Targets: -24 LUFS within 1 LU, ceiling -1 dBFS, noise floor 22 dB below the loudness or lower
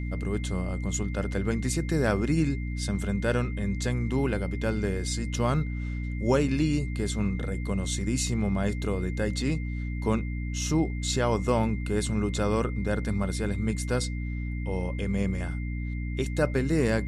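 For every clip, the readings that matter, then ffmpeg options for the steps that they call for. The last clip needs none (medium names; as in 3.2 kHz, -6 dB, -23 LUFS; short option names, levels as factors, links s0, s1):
hum 60 Hz; highest harmonic 300 Hz; hum level -29 dBFS; steady tone 2.1 kHz; tone level -44 dBFS; loudness -28.5 LUFS; peak level -10.5 dBFS; loudness target -24.0 LUFS
-> -af "bandreject=f=60:t=h:w=6,bandreject=f=120:t=h:w=6,bandreject=f=180:t=h:w=6,bandreject=f=240:t=h:w=6,bandreject=f=300:t=h:w=6"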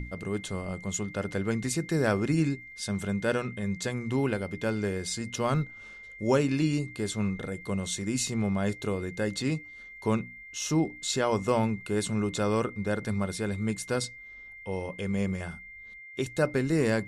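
hum not found; steady tone 2.1 kHz; tone level -44 dBFS
-> -af "bandreject=f=2100:w=30"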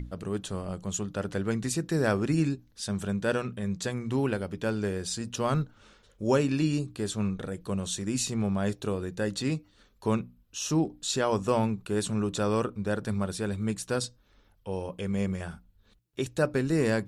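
steady tone not found; loudness -30.0 LUFS; peak level -12.5 dBFS; loudness target -24.0 LUFS
-> -af "volume=2"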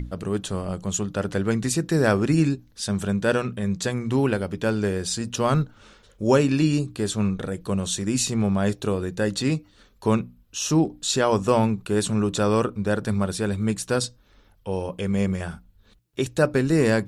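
loudness -24.0 LUFS; peak level -6.5 dBFS; noise floor -57 dBFS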